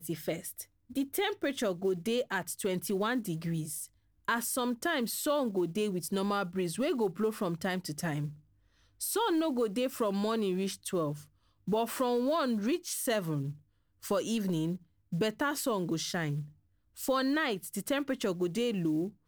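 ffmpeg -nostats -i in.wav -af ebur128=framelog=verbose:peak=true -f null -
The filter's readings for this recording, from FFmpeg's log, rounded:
Integrated loudness:
  I:         -32.5 LUFS
  Threshold: -42.8 LUFS
Loudness range:
  LRA:         1.6 LU
  Threshold: -52.8 LUFS
  LRA low:   -33.6 LUFS
  LRA high:  -32.0 LUFS
True peak:
  Peak:      -17.3 dBFS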